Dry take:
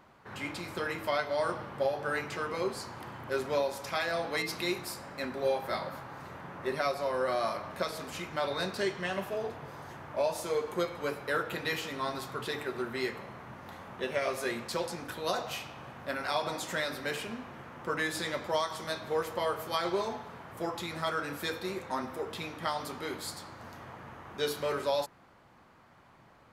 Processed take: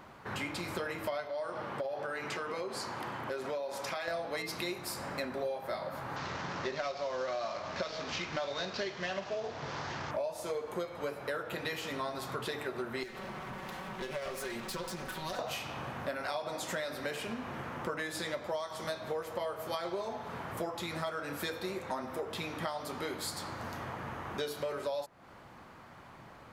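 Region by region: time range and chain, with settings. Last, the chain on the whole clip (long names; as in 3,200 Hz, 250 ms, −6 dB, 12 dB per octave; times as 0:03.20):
0:01.27–0:04.08: high-pass filter 230 Hz 6 dB per octave + high-shelf EQ 11,000 Hz −8.5 dB + downward compressor 3 to 1, threshold −36 dBFS
0:06.16–0:10.11: variable-slope delta modulation 32 kbit/s + low-pass filter 4,000 Hz 6 dB per octave + high-shelf EQ 2,300 Hz +11 dB
0:13.03–0:15.39: lower of the sound and its delayed copy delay 5.3 ms + downward compressor 2.5 to 1, threshold −44 dBFS
whole clip: dynamic equaliser 620 Hz, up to +6 dB, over −46 dBFS, Q 2.7; downward compressor 6 to 1, threshold −41 dBFS; level +6.5 dB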